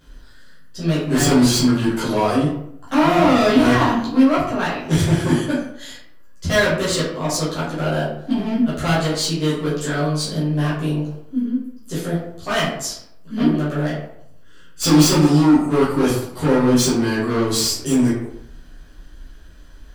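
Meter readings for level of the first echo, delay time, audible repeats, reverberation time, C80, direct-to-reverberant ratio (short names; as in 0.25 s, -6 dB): none, none, none, 0.75 s, 6.0 dB, -10.5 dB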